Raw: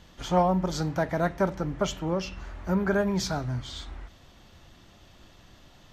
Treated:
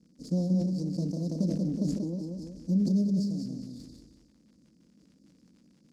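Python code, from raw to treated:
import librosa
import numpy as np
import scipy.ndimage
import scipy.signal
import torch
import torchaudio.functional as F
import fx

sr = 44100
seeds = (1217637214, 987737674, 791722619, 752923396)

y = scipy.signal.medfilt(x, 15)
y = scipy.signal.sosfilt(scipy.signal.cheby1(4, 1.0, [430.0, 4800.0], 'bandstop', fs=sr, output='sos'), y)
y = fx.fixed_phaser(y, sr, hz=390.0, stages=6)
y = fx.transient(y, sr, attack_db=7, sustain_db=-3)
y = fx.dmg_crackle(y, sr, seeds[0], per_s=91.0, level_db=-56.0)
y = fx.bandpass_edges(y, sr, low_hz=180.0, high_hz=7000.0)
y = fx.echo_feedback(y, sr, ms=184, feedback_pct=33, wet_db=-4.0)
y = fx.sustainer(y, sr, db_per_s=37.0)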